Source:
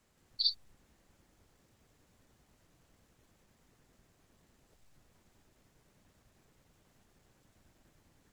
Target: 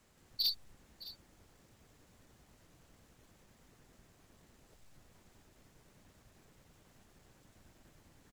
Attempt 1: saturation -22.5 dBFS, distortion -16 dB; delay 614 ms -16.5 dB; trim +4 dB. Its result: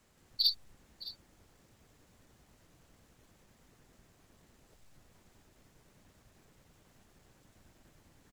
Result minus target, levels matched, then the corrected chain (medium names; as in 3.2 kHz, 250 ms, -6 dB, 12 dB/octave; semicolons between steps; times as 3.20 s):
saturation: distortion -9 dB
saturation -31.5 dBFS, distortion -7 dB; delay 614 ms -16.5 dB; trim +4 dB